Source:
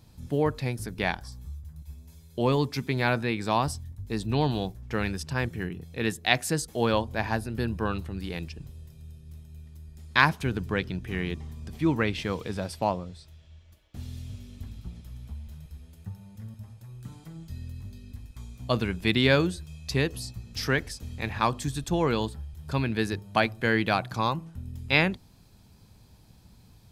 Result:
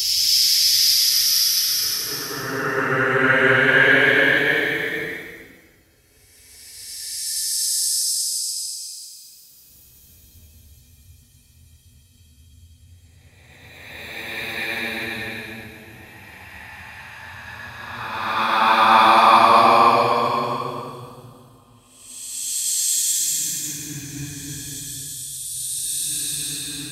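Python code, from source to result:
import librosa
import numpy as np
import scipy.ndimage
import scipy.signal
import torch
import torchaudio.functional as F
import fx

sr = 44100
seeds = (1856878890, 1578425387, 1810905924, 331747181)

p1 = fx.paulstretch(x, sr, seeds[0], factor=22.0, window_s=0.1, from_s=20.57)
p2 = fx.riaa(p1, sr, side='recording')
p3 = p2 + fx.echo_single(p2, sr, ms=245, db=-8.5, dry=0)
p4 = fx.band_widen(p3, sr, depth_pct=70)
y = F.gain(torch.from_numpy(p4), 3.0).numpy()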